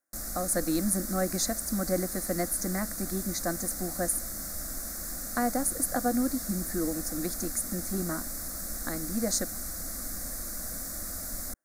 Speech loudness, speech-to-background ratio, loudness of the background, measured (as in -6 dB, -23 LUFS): -31.5 LUFS, 3.5 dB, -35.0 LUFS